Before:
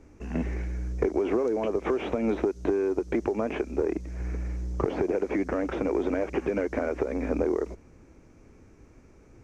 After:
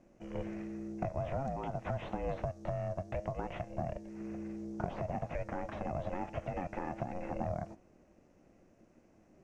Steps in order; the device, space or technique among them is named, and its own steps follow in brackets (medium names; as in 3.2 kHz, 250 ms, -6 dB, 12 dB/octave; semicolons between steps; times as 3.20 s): alien voice (ring modulator 270 Hz; flange 0.56 Hz, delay 8.2 ms, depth 3.6 ms, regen +86%); trim -3 dB